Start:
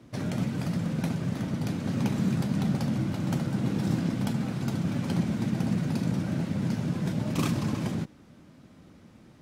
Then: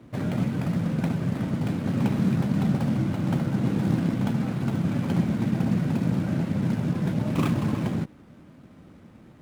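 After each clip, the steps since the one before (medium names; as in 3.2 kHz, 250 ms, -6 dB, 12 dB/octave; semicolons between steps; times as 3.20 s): median filter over 9 samples; trim +3.5 dB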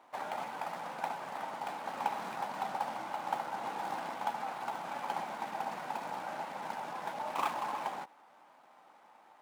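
resonant high-pass 840 Hz, resonance Q 4.9; trim -5.5 dB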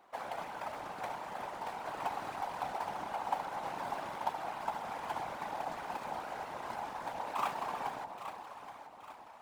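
echo whose repeats swap between lows and highs 412 ms, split 880 Hz, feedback 67%, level -6 dB; whisper effect; trim -2 dB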